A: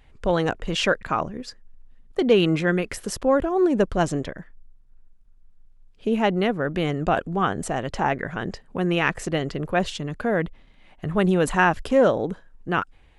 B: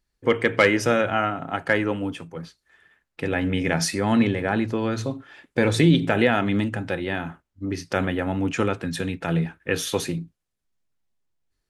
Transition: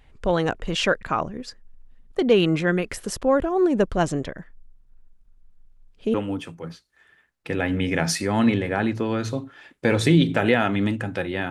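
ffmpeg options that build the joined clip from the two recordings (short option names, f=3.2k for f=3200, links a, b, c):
-filter_complex "[0:a]apad=whole_dur=11.5,atrim=end=11.5,atrim=end=6.142[a];[1:a]atrim=start=1.868:end=7.23[b];[a][b]acrossfade=d=0.004:c1=hsin:c2=hsin"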